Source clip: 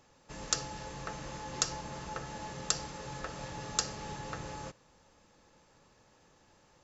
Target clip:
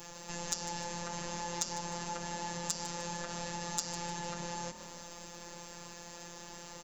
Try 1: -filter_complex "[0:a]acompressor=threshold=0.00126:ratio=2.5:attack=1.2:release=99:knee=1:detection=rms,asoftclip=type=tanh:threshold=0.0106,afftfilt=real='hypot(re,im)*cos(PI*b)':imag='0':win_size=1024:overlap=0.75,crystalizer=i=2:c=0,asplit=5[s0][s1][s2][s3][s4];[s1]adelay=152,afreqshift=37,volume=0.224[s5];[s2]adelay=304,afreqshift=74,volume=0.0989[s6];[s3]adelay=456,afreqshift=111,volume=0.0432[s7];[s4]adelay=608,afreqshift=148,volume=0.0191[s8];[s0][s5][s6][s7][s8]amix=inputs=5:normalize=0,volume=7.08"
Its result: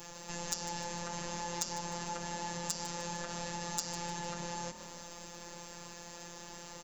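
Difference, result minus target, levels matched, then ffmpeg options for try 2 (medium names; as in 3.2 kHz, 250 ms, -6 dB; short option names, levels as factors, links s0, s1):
saturation: distortion +14 dB
-filter_complex "[0:a]acompressor=threshold=0.00126:ratio=2.5:attack=1.2:release=99:knee=1:detection=rms,asoftclip=type=tanh:threshold=0.0316,afftfilt=real='hypot(re,im)*cos(PI*b)':imag='0':win_size=1024:overlap=0.75,crystalizer=i=2:c=0,asplit=5[s0][s1][s2][s3][s4];[s1]adelay=152,afreqshift=37,volume=0.224[s5];[s2]adelay=304,afreqshift=74,volume=0.0989[s6];[s3]adelay=456,afreqshift=111,volume=0.0432[s7];[s4]adelay=608,afreqshift=148,volume=0.0191[s8];[s0][s5][s6][s7][s8]amix=inputs=5:normalize=0,volume=7.08"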